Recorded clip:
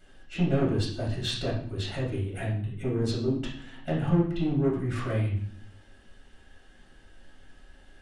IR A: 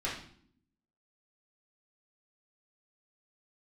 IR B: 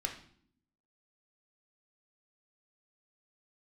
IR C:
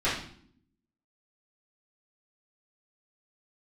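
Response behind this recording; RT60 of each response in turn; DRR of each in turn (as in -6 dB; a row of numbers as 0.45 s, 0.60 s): A; 0.60 s, 0.60 s, 0.60 s; -7.5 dB, 2.0 dB, -12.0 dB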